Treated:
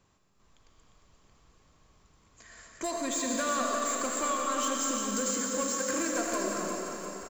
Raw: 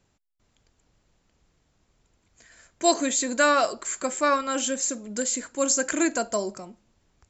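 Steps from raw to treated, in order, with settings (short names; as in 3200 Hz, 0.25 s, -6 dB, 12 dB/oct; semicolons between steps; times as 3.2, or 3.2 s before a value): bell 1100 Hz +12 dB 0.22 oct; compressor 10:1, threshold -27 dBFS, peak gain reduction 17.5 dB; soft clip -27.5 dBFS, distortion -13 dB; feedback echo 0.352 s, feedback 50%, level -7.5 dB; reverb RT60 3.4 s, pre-delay 40 ms, DRR -0.5 dB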